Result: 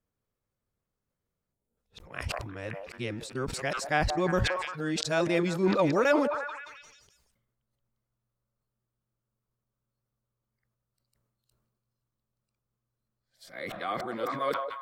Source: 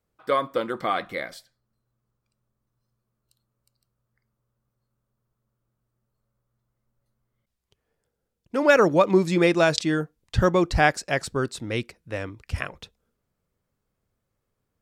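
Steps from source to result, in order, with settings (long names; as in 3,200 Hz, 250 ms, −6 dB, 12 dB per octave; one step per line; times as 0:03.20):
played backwards from end to start
gain on a spectral selection 0:01.53–0:01.77, 970–6,700 Hz −13 dB
on a send: echo through a band-pass that steps 175 ms, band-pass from 750 Hz, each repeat 0.7 octaves, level −10 dB
on the sum: level that may fall only so fast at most 44 dB per second
level −8 dB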